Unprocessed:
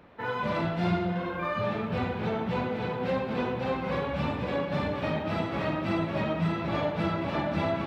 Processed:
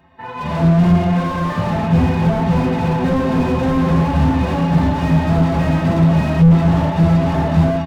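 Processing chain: comb 1.1 ms, depth 60%; AGC gain up to 15 dB; metallic resonator 78 Hz, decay 0.24 s, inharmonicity 0.03; slew limiter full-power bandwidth 30 Hz; gain +8.5 dB

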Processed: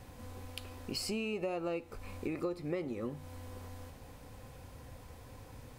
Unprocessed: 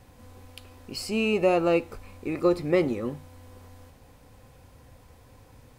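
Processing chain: compressor 6:1, threshold -36 dBFS, peak gain reduction 18 dB; gain +1.5 dB

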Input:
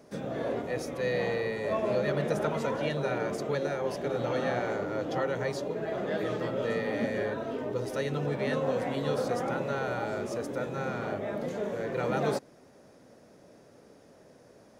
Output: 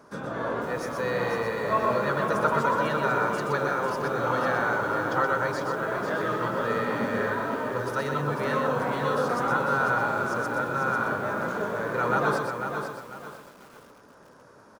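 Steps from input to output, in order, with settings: band shelf 1200 Hz +12 dB 1 oct; on a send: echo 0.123 s -5.5 dB; on the sum: lo-fi delay 0.496 s, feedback 35%, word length 8-bit, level -6.5 dB

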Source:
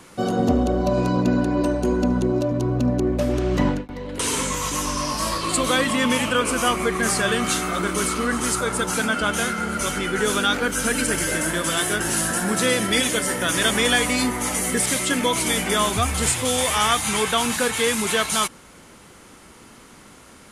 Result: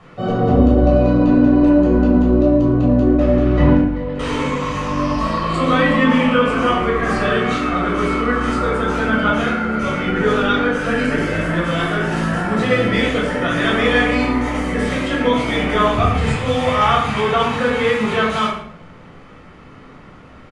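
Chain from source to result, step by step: LPF 2500 Hz 12 dB/oct; bell 260 Hz -2.5 dB 0.89 oct; echo 0.112 s -14 dB; shoebox room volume 990 m³, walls furnished, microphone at 6.3 m; gain -2.5 dB

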